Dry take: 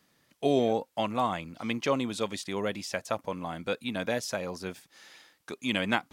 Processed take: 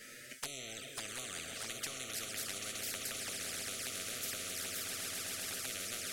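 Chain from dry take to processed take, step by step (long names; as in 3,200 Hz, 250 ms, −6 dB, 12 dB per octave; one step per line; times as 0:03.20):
downward compressor 10 to 1, threshold −29 dBFS, peak gain reduction 10.5 dB
elliptic band-stop filter 640–1,300 Hz, stop band 40 dB
parametric band 790 Hz +3.5 dB 0.72 octaves
tuned comb filter 130 Hz, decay 0.35 s, harmonics all, mix 70%
echo that builds up and dies away 131 ms, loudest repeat 8, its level −13.5 dB
on a send at −23.5 dB: convolution reverb RT60 4.1 s, pre-delay 23 ms
on the sum: flanger swept by the level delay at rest 9 ms, full sweep at −38 dBFS
graphic EQ with 10 bands 125 Hz −9 dB, 250 Hz −4 dB, 500 Hz +5 dB, 1,000 Hz −9 dB, 2,000 Hz +10 dB, 4,000 Hz −3 dB, 8,000 Hz +8 dB
every bin compressed towards the loudest bin 10 to 1
level +1 dB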